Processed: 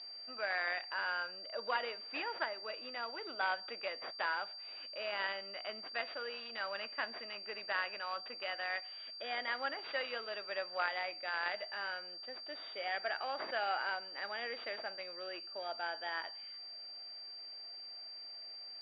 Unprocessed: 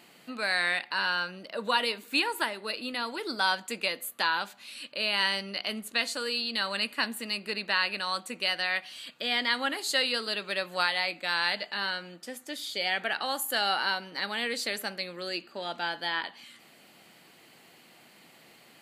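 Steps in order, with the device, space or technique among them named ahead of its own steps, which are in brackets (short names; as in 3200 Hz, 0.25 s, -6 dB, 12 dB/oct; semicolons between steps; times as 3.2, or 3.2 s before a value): toy sound module (decimation joined by straight lines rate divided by 4×; pulse-width modulation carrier 4700 Hz; speaker cabinet 530–4000 Hz, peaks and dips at 650 Hz +5 dB, 980 Hz -4 dB, 3500 Hz +6 dB); gain -5.5 dB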